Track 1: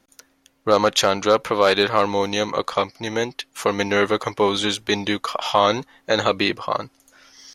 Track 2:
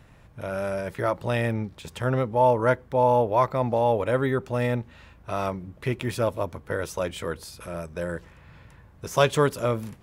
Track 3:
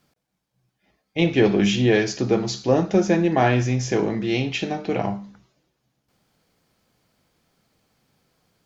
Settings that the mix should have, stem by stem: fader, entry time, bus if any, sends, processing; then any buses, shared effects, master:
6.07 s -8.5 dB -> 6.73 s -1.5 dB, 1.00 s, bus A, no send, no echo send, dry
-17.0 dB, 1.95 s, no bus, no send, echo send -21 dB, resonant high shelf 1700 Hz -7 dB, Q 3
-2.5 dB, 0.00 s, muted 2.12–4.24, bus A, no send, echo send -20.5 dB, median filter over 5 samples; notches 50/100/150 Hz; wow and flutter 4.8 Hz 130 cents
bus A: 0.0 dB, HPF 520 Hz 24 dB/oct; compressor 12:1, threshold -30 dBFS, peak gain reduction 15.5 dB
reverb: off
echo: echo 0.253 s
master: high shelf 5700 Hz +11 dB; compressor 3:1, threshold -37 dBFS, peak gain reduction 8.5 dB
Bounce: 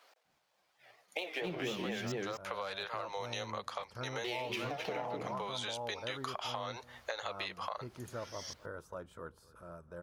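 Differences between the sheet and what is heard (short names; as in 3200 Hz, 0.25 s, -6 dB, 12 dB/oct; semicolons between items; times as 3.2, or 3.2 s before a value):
stem 3 -2.5 dB -> +7.0 dB; master: missing high shelf 5700 Hz +11 dB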